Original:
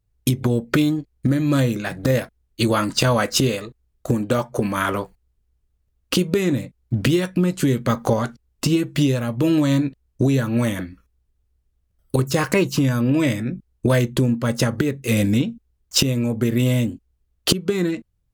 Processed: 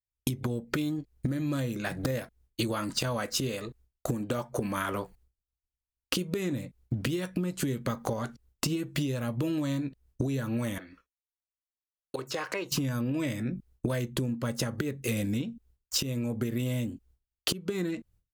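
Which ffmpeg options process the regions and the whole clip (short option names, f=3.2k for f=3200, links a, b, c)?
-filter_complex "[0:a]asettb=1/sr,asplit=3[a][b][c];[a]atrim=end=10.784[d];[b]atrim=start=10.78:end=12.72,asetpts=PTS-STARTPTS,afade=t=in:d=0.004:c=qsin,afade=t=out:st=1.936:d=0.004:c=qsin,acrossover=split=360 5600:gain=0.126 1 0.2[e][f][g];[e][f][g]amix=inputs=3:normalize=0,acompressor=threshold=-47dB:ratio=1.5:attack=3.2:release=140:knee=1:detection=peak[h];[c]atrim=start=12.716[i];[d][h]acrossfade=d=0.004:c1=hsin:c2=qsin[j];[j][i]acrossfade=d=0.004:c1=qsin:c2=hsin,agate=range=-33dB:threshold=-49dB:ratio=3:detection=peak,highshelf=f=10k:g=4,acompressor=threshold=-30dB:ratio=6,volume=1.5dB"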